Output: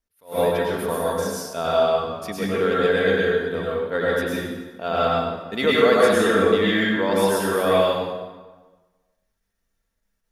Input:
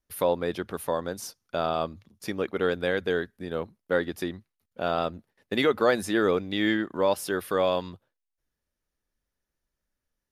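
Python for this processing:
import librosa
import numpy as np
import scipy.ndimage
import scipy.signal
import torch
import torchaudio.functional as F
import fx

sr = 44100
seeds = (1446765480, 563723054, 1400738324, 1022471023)

y = fx.peak_eq(x, sr, hz=260.0, db=-2.5, octaves=0.77)
y = fx.hum_notches(y, sr, base_hz=60, count=3)
y = y + 0.39 * np.pad(y, (int(4.4 * sr / 1000.0), 0))[:len(y)]
y = fx.rev_plate(y, sr, seeds[0], rt60_s=1.3, hf_ratio=0.75, predelay_ms=90, drr_db=-6.0)
y = fx.attack_slew(y, sr, db_per_s=210.0)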